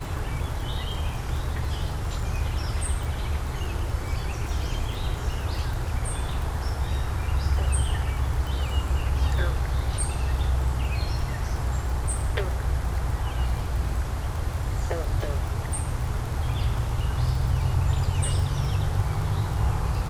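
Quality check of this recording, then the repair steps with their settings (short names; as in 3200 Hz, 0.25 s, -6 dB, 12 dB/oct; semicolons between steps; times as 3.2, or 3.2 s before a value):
crackle 21/s -30 dBFS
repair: de-click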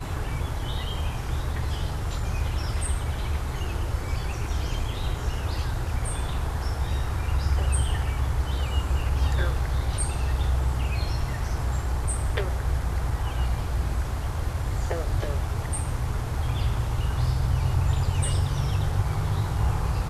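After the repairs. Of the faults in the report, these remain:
none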